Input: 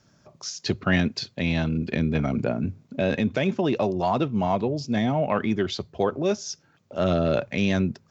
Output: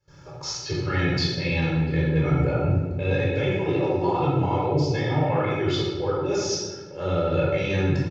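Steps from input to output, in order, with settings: gate with hold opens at -51 dBFS; LPF 3800 Hz 6 dB/oct; comb 2.3 ms, depth 94%; reverse; compressor 5:1, threshold -34 dBFS, peak gain reduction 17.5 dB; reverse; reverb RT60 1.3 s, pre-delay 12 ms, DRR -6.5 dB; gain +1.5 dB

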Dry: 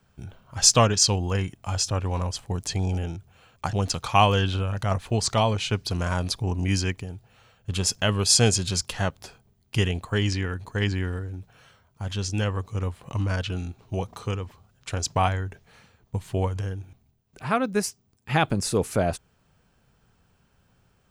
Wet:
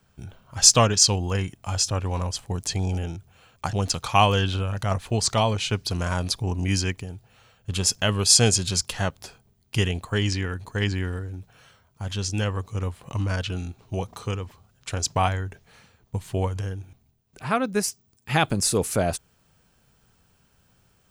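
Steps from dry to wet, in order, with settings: high shelf 4300 Hz +4 dB, from 17.88 s +9 dB

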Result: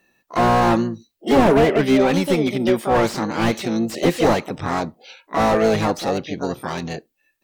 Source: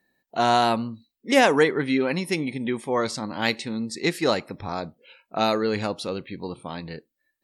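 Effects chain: harmoniser +7 st -3 dB; slew limiter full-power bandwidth 75 Hz; gain +6.5 dB

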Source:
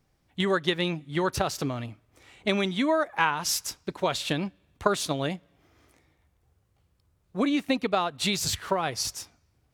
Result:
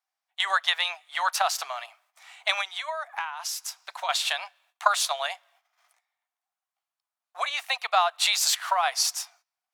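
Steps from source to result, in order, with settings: gate -59 dBFS, range -17 dB; Chebyshev high-pass 690 Hz, order 5; 2.61–4.09 compressor 12:1, threshold -35 dBFS, peak gain reduction 16 dB; gain +6 dB

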